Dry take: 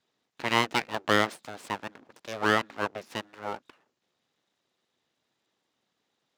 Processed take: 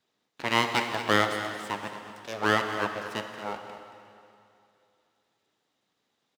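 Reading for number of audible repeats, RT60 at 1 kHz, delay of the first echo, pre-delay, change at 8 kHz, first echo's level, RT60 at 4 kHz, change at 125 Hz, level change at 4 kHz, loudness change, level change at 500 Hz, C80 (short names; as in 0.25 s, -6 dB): 1, 2.7 s, 0.226 s, 7 ms, +1.0 dB, -11.5 dB, 2.5 s, +1.5 dB, +1.0 dB, +0.5 dB, +0.5 dB, 6.5 dB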